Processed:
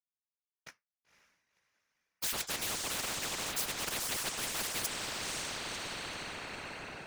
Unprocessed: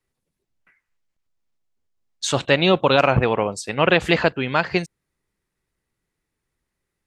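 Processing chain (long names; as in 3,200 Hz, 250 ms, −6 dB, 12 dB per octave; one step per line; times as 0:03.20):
reversed playback
downward compressor 6 to 1, threshold −28 dBFS, peak gain reduction 16 dB
reversed playback
high-pass filter 190 Hz 24 dB per octave
dead-zone distortion −51.5 dBFS
flanger 0.47 Hz, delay 8 ms, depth 4.4 ms, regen +66%
on a send: feedback delay with all-pass diffusion 517 ms, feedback 42%, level −12 dB
on the sum: random phases in short frames
every bin compressed towards the loudest bin 10 to 1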